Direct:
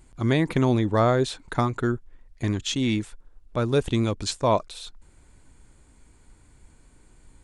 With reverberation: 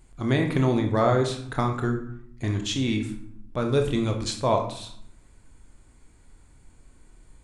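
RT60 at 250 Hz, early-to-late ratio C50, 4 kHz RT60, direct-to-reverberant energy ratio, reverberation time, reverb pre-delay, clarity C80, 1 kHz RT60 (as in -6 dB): 1.0 s, 7.5 dB, 0.45 s, 3.0 dB, 0.65 s, 22 ms, 11.5 dB, 0.70 s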